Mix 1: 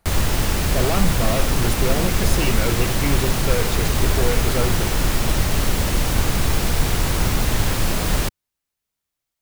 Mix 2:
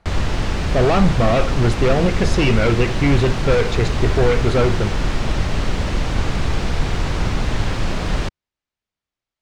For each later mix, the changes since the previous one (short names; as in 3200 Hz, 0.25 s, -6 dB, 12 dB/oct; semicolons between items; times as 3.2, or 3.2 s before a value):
speech +7.5 dB; master: add air absorption 120 m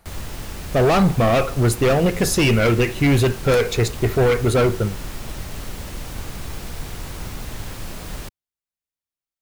background -12.0 dB; master: remove air absorption 120 m